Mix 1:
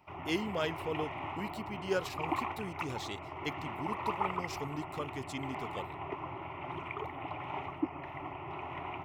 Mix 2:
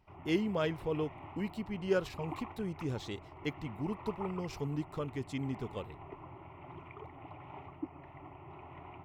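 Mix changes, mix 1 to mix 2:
background −10.5 dB
master: add spectral tilt −2 dB per octave

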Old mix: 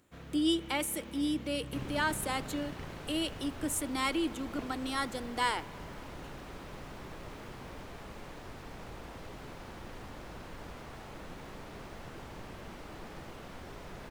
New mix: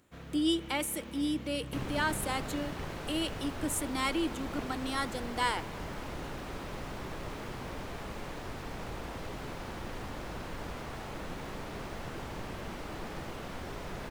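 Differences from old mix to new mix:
first sound: send on
second sound +5.5 dB

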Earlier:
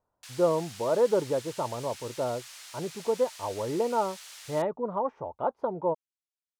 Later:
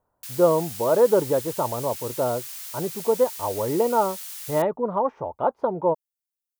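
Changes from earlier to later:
speech +6.0 dB
background: remove high-frequency loss of the air 71 metres

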